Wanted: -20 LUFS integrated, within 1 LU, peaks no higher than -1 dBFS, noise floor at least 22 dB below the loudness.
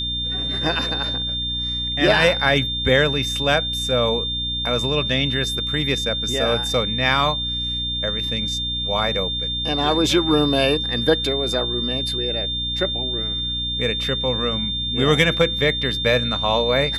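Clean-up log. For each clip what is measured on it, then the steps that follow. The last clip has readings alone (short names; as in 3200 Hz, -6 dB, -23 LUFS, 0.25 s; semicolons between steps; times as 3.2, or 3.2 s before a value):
hum 60 Hz; harmonics up to 300 Hz; hum level -29 dBFS; steady tone 3600 Hz; tone level -23 dBFS; loudness -20.0 LUFS; peak -2.0 dBFS; loudness target -20.0 LUFS
-> notches 60/120/180/240/300 Hz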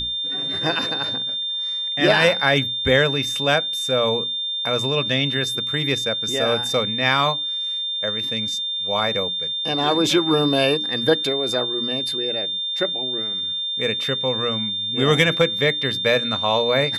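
hum none; steady tone 3600 Hz; tone level -23 dBFS
-> notch 3600 Hz, Q 30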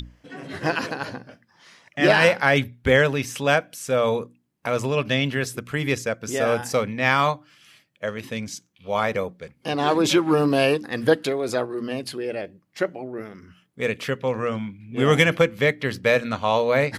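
steady tone none; loudness -22.5 LUFS; peak -2.5 dBFS; loudness target -20.0 LUFS
-> gain +2.5 dB; limiter -1 dBFS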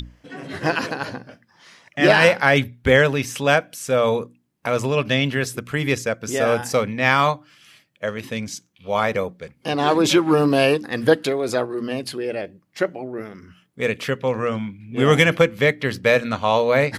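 loudness -20.0 LUFS; peak -1.0 dBFS; noise floor -63 dBFS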